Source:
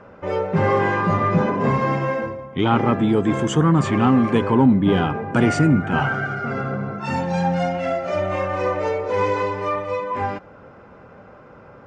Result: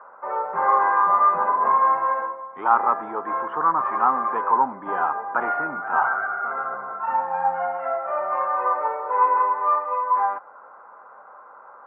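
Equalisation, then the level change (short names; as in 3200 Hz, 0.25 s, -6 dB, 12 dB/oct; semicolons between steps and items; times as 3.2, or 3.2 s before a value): resonant high-pass 1000 Hz, resonance Q 2.2; LPF 1400 Hz 24 dB/oct; air absorption 73 m; +1.0 dB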